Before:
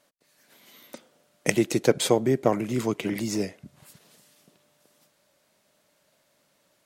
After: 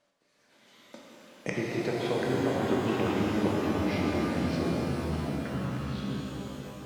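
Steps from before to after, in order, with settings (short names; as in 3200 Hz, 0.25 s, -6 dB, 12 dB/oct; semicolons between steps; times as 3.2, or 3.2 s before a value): air absorption 75 m; echoes that change speed 0.349 s, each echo -4 st, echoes 2; treble ducked by the level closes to 2800 Hz, closed at -21 dBFS; compressor, threshold -23 dBFS, peak gain reduction 10 dB; shimmer reverb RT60 3.9 s, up +12 st, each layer -8 dB, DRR -4 dB; gain -5.5 dB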